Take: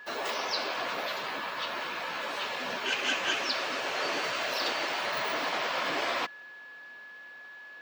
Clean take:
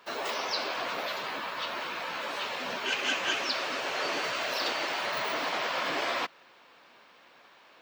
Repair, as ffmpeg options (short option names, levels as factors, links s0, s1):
-af "bandreject=f=1700:w=30"